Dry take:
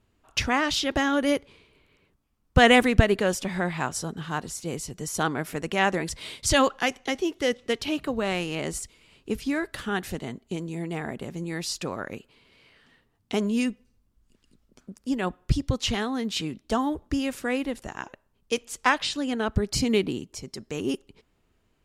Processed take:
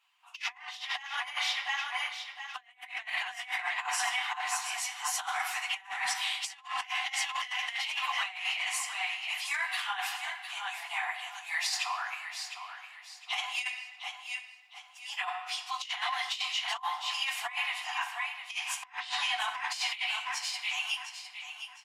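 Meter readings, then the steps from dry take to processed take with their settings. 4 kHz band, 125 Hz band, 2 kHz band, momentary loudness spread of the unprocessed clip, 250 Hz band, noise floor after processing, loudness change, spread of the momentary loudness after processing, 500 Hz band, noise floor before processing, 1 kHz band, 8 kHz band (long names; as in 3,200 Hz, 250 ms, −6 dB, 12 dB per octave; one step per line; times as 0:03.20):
−0.5 dB, below −40 dB, −2.5 dB, 13 LU, below −40 dB, −55 dBFS, −6.5 dB, 10 LU, −26.0 dB, −69 dBFS, −5.0 dB, −3.0 dB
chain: random phases in long frames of 50 ms
Chebyshev high-pass with heavy ripple 720 Hz, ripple 9 dB
in parallel at −7 dB: soft clipping −20.5 dBFS, distortion −14 dB
on the sum: dynamic equaliser 2,000 Hz, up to +7 dB, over −47 dBFS, Q 4.4
on a send: repeating echo 708 ms, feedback 33%, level −10 dB
on the sum: rectangular room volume 1,000 cubic metres, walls mixed, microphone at 0.8 metres
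compressor whose output falls as the input rises −34 dBFS, ratio −0.5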